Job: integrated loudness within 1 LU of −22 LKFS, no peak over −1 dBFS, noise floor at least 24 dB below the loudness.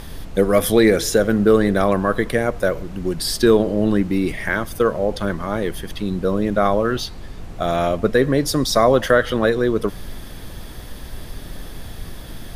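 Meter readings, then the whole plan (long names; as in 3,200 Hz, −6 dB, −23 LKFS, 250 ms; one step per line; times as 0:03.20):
background noise floor −35 dBFS; target noise floor −43 dBFS; integrated loudness −19.0 LKFS; sample peak −2.0 dBFS; target loudness −22.0 LKFS
→ noise reduction from a noise print 8 dB
level −3 dB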